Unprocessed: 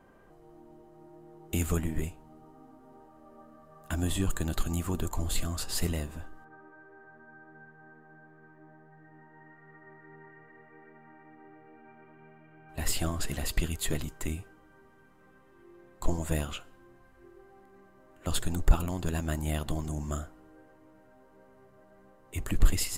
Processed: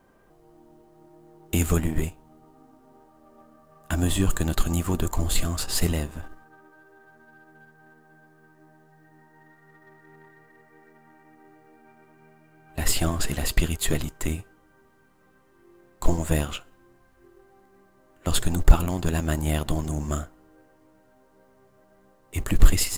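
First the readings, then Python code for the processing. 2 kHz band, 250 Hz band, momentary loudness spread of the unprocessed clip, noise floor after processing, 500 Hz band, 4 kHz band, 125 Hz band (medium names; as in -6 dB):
+6.5 dB, +6.5 dB, 23 LU, -60 dBFS, +6.5 dB, +6.5 dB, +6.5 dB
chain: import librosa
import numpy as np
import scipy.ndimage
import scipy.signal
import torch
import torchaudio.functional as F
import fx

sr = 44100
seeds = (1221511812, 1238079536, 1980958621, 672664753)

y = fx.law_mismatch(x, sr, coded='A')
y = y * 10.0 ** (7.5 / 20.0)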